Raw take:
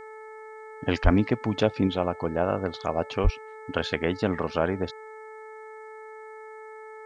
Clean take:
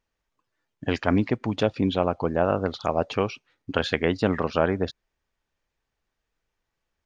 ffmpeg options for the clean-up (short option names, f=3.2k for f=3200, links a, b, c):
-filter_complex "[0:a]bandreject=f=435.8:t=h:w=4,bandreject=f=871.6:t=h:w=4,bandreject=f=1.3074k:t=h:w=4,bandreject=f=1.7432k:t=h:w=4,bandreject=f=2.179k:t=h:w=4,asplit=3[a][b][c];[a]afade=t=out:st=1.03:d=0.02[d];[b]highpass=f=140:w=0.5412,highpass=f=140:w=1.3066,afade=t=in:st=1.03:d=0.02,afade=t=out:st=1.15:d=0.02[e];[c]afade=t=in:st=1.15:d=0.02[f];[d][e][f]amix=inputs=3:normalize=0,asplit=3[g][h][i];[g]afade=t=out:st=3.23:d=0.02[j];[h]highpass=f=140:w=0.5412,highpass=f=140:w=1.3066,afade=t=in:st=3.23:d=0.02,afade=t=out:st=3.35:d=0.02[k];[i]afade=t=in:st=3.35:d=0.02[l];[j][k][l]amix=inputs=3:normalize=0,agate=range=-21dB:threshold=-35dB,asetnsamples=n=441:p=0,asendcmd='1.87 volume volume 3dB',volume=0dB"